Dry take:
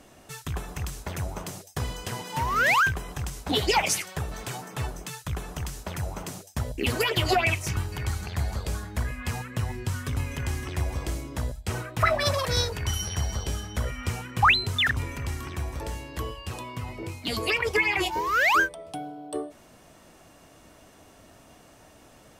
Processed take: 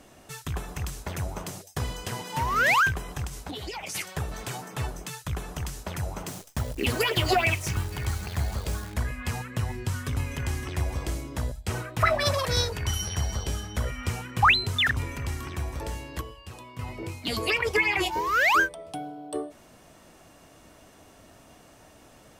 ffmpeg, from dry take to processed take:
-filter_complex "[0:a]asplit=3[s0][s1][s2];[s0]afade=t=out:st=3.26:d=0.02[s3];[s1]acompressor=threshold=0.0251:ratio=16:attack=3.2:release=140:knee=1:detection=peak,afade=t=in:st=3.26:d=0.02,afade=t=out:st=3.94:d=0.02[s4];[s2]afade=t=in:st=3.94:d=0.02[s5];[s3][s4][s5]amix=inputs=3:normalize=0,asettb=1/sr,asplit=3[s6][s7][s8];[s6]atrim=end=6.264[s9];[s7]atrim=start=6.26:end=8.94,asetpts=PTS-STARTPTS,afade=t=in:d=0.004:c=qsin,afade=t=out:st=2.676:d=0.004:c=qsin,acrusher=bits=8:dc=4:mix=0:aa=0.000001[s10];[s8]atrim=start=8.936[s11];[s9][s10]acrossfade=d=0.004:c1=hsin:c2=qsin[s12];[s12][s11]acrossfade=d=0.004:c1=qsin:c2=hsin,asplit=3[s13][s14][s15];[s13]atrim=end=16.212[s16];[s14]atrim=start=16.208:end=16.792,asetpts=PTS-STARTPTS,volume=0.422[s17];[s15]atrim=start=16.788[s18];[s16][s17]acrossfade=d=0.004:c1=hsin:c2=hsin[s19];[s19][s18]acrossfade=d=0.004:c1=hsin:c2=hsin"

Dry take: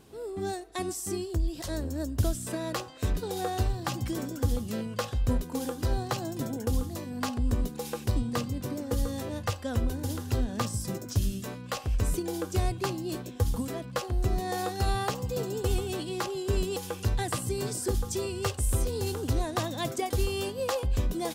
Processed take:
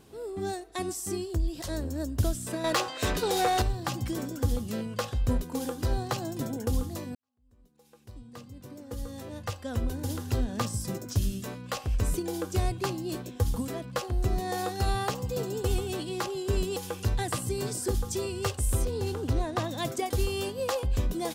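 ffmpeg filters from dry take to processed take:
-filter_complex "[0:a]asettb=1/sr,asplit=3[s0][s1][s2];[s0]atrim=end=2.644[s3];[s1]atrim=start=2.64:end=3.62,asetpts=PTS-STARTPTS,afade=t=in:d=0.004:c=qsin,afade=t=out:st=0.976:d=0.004:c=qsin,asplit=2[s4][s5];[s5]highpass=f=720:p=1,volume=8.91,asoftclip=type=tanh:threshold=0.158[s6];[s4][s6]amix=inputs=2:normalize=0,lowpass=f=6400:p=1,volume=0.501[s7];[s2]atrim=start=3.616[s8];[s3][s7]acrossfade=d=0.004:c1=hsin:c2=qsin[s9];[s9][s8]acrossfade=d=0.004:c1=qsin:c2=hsin,asettb=1/sr,asplit=3[s10][s11][s12];[s10]atrim=end=18.854[s13];[s11]atrim=start=18.85:end=19.69,asetpts=PTS-STARTPTS,afade=t=in:d=0.004:c=qsin,afade=t=out:st=0.836:d=0.004:c=qsin,aemphasis=mode=reproduction:type=cd[s14];[s12]atrim=start=19.686[s15];[s13][s14]acrossfade=d=0.004:c1=hsin:c2=qsin[s16];[s16][s15]acrossfade=d=0.004:c1=qsin:c2=hsin,asplit=2[s17][s18];[s17]atrim=end=7.15,asetpts=PTS-STARTPTS,afade=t=out:st=7.146:d=0.004:c=hsin[s19];[s18]atrim=start=7.15,asetpts=PTS-STARTPTS,afade=t=in:d=2.95:c=qua[s20];[s19][s20]concat=n=2:v=0:a=1"

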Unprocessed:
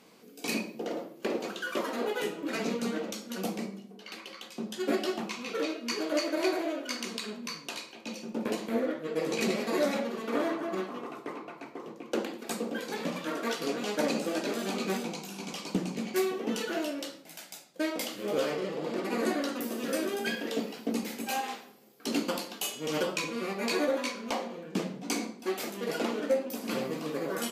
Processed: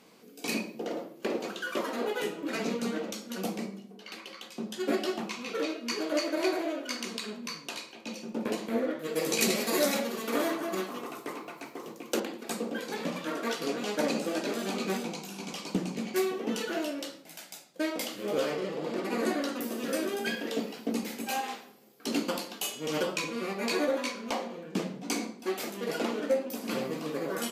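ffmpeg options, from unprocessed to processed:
-filter_complex "[0:a]asettb=1/sr,asplit=3[s0][s1][s2];[s0]atrim=end=8.994[s3];[s1]atrim=start=8.99:end=12.2,asetpts=PTS-STARTPTS,afade=t=in:d=0.004:c=qsin,afade=t=out:st=3.206:d=0.004:c=qsin,aemphasis=mode=production:type=75kf[s4];[s2]atrim=start=12.196[s5];[s3][s4]acrossfade=d=0.004:c1=hsin:c2=qsin[s6];[s6][s5]acrossfade=d=0.004:c1=qsin:c2=hsin"

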